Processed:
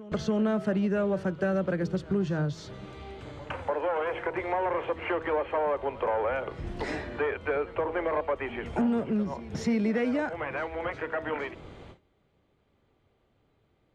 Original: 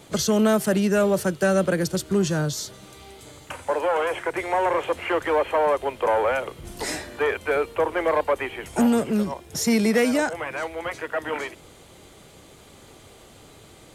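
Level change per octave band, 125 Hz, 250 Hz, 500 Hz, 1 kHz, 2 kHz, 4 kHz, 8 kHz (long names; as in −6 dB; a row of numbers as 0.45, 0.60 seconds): −4.0 dB, −5.5 dB, −6.5 dB, −6.5 dB, −7.0 dB, −12.5 dB, below −20 dB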